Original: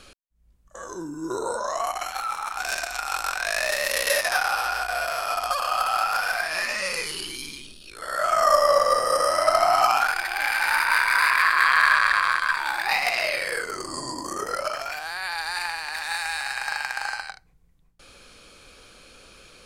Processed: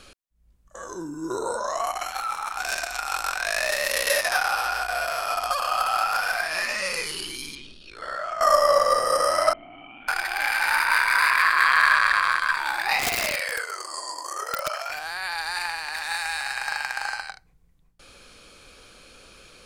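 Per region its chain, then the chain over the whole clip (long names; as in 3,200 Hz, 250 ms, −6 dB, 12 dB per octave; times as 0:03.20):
0:07.55–0:08.41: low-pass filter 4,800 Hz + downward compressor 12 to 1, threshold −26 dBFS
0:09.53–0:10.08: formant resonators in series i + high-frequency loss of the air 260 metres + envelope flattener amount 70%
0:12.99–0:14.90: high-pass filter 550 Hz 24 dB per octave + wrap-around overflow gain 17 dB
whole clip: no processing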